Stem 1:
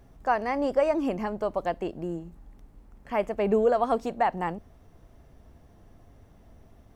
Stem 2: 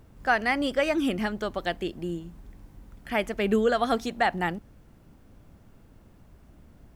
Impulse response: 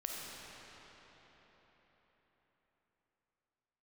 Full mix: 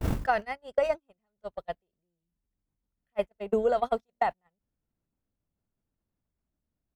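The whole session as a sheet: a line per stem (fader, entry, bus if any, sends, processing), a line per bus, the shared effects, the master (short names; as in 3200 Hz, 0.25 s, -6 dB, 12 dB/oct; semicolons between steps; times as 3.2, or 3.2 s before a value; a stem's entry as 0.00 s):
+2.5 dB, 0.00 s, no send, dry
-0.5 dB, 1 ms, no send, fast leveller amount 100%; auto duck -12 dB, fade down 0.95 s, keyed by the first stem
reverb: off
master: gate -19 dBFS, range -53 dB; compressor 4:1, threshold -22 dBFS, peak gain reduction 7 dB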